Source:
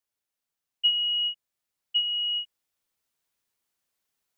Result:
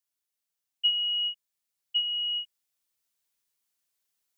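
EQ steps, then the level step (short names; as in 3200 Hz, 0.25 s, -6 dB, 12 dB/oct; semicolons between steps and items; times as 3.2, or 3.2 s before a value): high shelf 2700 Hz +8.5 dB; -6.5 dB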